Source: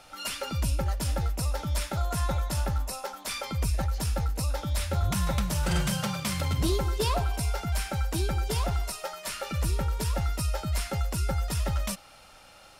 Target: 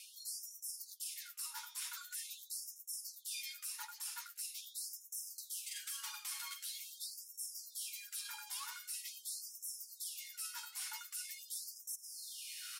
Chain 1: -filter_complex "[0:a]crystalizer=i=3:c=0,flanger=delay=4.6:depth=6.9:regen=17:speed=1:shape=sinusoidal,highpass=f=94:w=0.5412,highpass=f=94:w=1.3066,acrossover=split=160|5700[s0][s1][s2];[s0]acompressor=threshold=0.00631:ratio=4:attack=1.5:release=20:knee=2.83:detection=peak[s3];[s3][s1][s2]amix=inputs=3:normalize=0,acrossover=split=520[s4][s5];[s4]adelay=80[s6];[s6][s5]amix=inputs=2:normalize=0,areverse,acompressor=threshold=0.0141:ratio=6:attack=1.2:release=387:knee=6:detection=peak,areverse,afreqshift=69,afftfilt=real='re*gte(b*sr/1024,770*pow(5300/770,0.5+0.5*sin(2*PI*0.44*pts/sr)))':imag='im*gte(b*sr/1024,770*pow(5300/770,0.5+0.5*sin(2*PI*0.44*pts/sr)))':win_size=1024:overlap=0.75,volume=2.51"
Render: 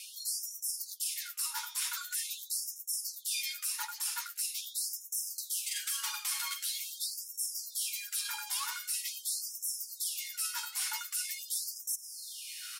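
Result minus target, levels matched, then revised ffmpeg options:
compression: peak gain reduction -9 dB
-filter_complex "[0:a]crystalizer=i=3:c=0,flanger=delay=4.6:depth=6.9:regen=17:speed=1:shape=sinusoidal,highpass=f=94:w=0.5412,highpass=f=94:w=1.3066,acrossover=split=160|5700[s0][s1][s2];[s0]acompressor=threshold=0.00631:ratio=4:attack=1.5:release=20:knee=2.83:detection=peak[s3];[s3][s1][s2]amix=inputs=3:normalize=0,acrossover=split=520[s4][s5];[s4]adelay=80[s6];[s6][s5]amix=inputs=2:normalize=0,areverse,acompressor=threshold=0.00398:ratio=6:attack=1.2:release=387:knee=6:detection=peak,areverse,afreqshift=69,afftfilt=real='re*gte(b*sr/1024,770*pow(5300/770,0.5+0.5*sin(2*PI*0.44*pts/sr)))':imag='im*gte(b*sr/1024,770*pow(5300/770,0.5+0.5*sin(2*PI*0.44*pts/sr)))':win_size=1024:overlap=0.75,volume=2.51"

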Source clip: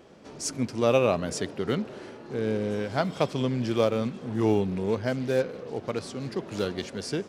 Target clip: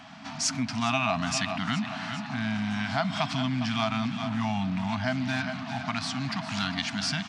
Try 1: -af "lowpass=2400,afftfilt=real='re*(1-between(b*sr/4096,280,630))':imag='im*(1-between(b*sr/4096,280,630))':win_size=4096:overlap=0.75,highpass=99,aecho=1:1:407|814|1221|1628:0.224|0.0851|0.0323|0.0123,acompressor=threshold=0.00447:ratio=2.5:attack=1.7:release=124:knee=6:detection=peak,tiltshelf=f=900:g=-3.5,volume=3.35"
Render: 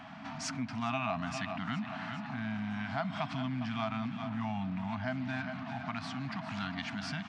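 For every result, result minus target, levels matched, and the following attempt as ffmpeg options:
compression: peak gain reduction +7 dB; 4 kHz band -5.0 dB
-af "lowpass=2400,afftfilt=real='re*(1-between(b*sr/4096,280,630))':imag='im*(1-between(b*sr/4096,280,630))':win_size=4096:overlap=0.75,highpass=99,aecho=1:1:407|814|1221|1628:0.224|0.0851|0.0323|0.0123,acompressor=threshold=0.0168:ratio=2.5:attack=1.7:release=124:knee=6:detection=peak,tiltshelf=f=900:g=-3.5,volume=3.35"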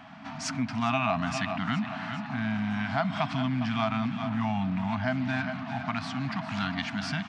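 4 kHz band -5.5 dB
-af "lowpass=4800,afftfilt=real='re*(1-between(b*sr/4096,280,630))':imag='im*(1-between(b*sr/4096,280,630))':win_size=4096:overlap=0.75,highpass=99,aecho=1:1:407|814|1221|1628:0.224|0.0851|0.0323|0.0123,acompressor=threshold=0.0168:ratio=2.5:attack=1.7:release=124:knee=6:detection=peak,tiltshelf=f=900:g=-3.5,volume=3.35"

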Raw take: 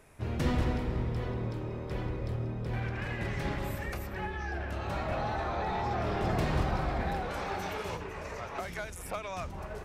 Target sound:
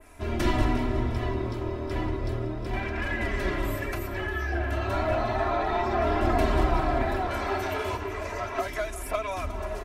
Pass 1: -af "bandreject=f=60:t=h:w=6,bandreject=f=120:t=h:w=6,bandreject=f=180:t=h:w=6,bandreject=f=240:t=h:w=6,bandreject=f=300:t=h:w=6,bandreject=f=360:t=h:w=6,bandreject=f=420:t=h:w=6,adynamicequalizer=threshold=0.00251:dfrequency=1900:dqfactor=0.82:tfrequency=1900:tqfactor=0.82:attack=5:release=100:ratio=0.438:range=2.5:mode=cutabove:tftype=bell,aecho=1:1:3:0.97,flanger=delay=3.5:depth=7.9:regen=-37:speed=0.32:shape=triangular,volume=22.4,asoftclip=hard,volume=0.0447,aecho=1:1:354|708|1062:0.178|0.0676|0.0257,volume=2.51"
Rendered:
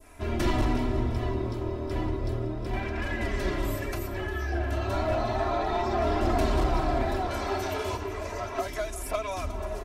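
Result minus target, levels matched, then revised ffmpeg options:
overload inside the chain: distortion +29 dB; 2 kHz band -2.5 dB
-af "bandreject=f=60:t=h:w=6,bandreject=f=120:t=h:w=6,bandreject=f=180:t=h:w=6,bandreject=f=240:t=h:w=6,bandreject=f=300:t=h:w=6,bandreject=f=360:t=h:w=6,bandreject=f=420:t=h:w=6,adynamicequalizer=threshold=0.00251:dfrequency=5500:dqfactor=0.82:tfrequency=5500:tqfactor=0.82:attack=5:release=100:ratio=0.438:range=2.5:mode=cutabove:tftype=bell,aecho=1:1:3:0.97,flanger=delay=3.5:depth=7.9:regen=-37:speed=0.32:shape=triangular,volume=10.6,asoftclip=hard,volume=0.0944,aecho=1:1:354|708|1062:0.178|0.0676|0.0257,volume=2.51"

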